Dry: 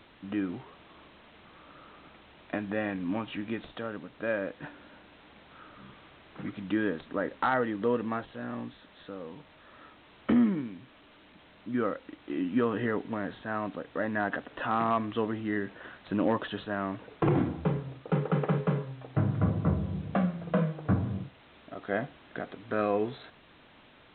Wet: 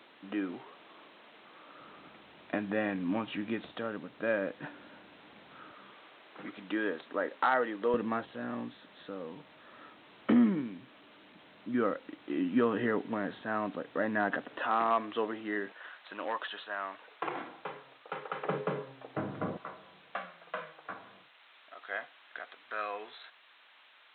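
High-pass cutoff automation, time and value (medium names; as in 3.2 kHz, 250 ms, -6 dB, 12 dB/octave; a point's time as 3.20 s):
300 Hz
from 1.80 s 140 Hz
from 5.72 s 380 Hz
from 7.94 s 160 Hz
from 14.59 s 370 Hz
from 15.72 s 860 Hz
from 18.45 s 330 Hz
from 19.57 s 1.1 kHz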